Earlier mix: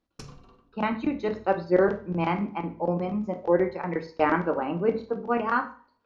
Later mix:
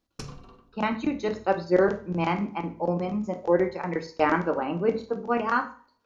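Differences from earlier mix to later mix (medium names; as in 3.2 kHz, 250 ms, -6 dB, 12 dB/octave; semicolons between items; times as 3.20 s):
speech: remove Gaussian low-pass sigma 1.8 samples; background +4.5 dB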